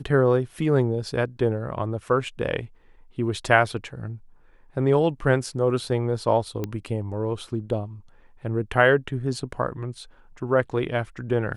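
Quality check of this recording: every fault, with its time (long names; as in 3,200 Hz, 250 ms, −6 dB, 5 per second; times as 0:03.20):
0:06.64: click −15 dBFS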